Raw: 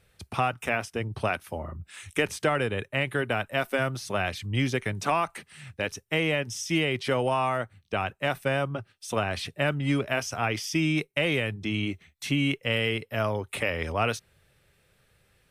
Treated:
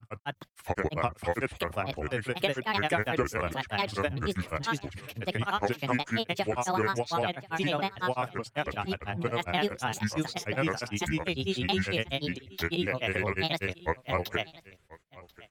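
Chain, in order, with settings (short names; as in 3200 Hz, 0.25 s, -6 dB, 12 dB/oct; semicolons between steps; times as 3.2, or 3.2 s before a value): grains, grains 20/s, spray 0.97 s, pitch spread up and down by 7 st; echo 1.036 s -21 dB; gain -1.5 dB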